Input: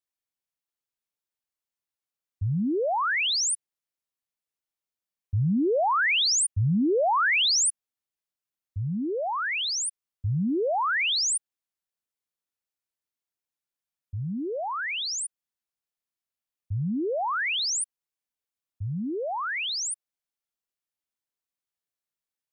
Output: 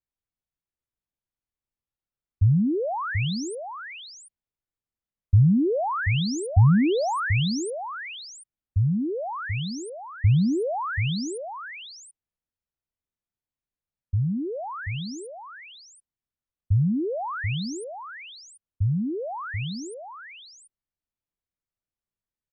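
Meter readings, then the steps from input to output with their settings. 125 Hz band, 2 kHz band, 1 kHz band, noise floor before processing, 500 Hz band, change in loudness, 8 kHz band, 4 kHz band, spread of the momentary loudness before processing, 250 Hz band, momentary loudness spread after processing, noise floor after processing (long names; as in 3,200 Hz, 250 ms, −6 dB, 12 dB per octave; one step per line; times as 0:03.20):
+8.5 dB, −5.0 dB, −2.5 dB, below −85 dBFS, 0.0 dB, 0.0 dB, −13.5 dB, −9.0 dB, 13 LU, +4.5 dB, 20 LU, below −85 dBFS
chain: RIAA equalisation playback
single-tap delay 734 ms −7.5 dB
level −3.5 dB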